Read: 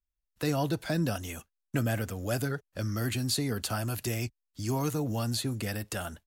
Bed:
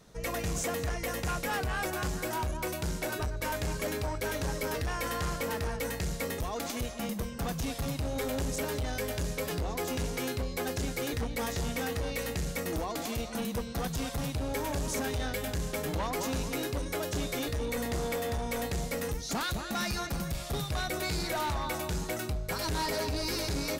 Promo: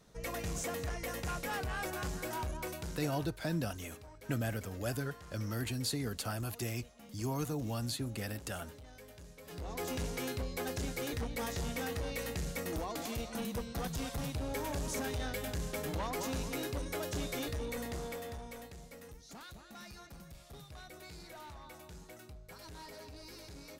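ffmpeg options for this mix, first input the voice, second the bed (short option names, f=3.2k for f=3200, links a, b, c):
-filter_complex "[0:a]adelay=2550,volume=-6dB[a];[1:a]volume=10dB,afade=t=out:st=2.56:d=0.82:silence=0.188365,afade=t=in:st=9.43:d=0.42:silence=0.16788,afade=t=out:st=17.42:d=1.33:silence=0.211349[b];[a][b]amix=inputs=2:normalize=0"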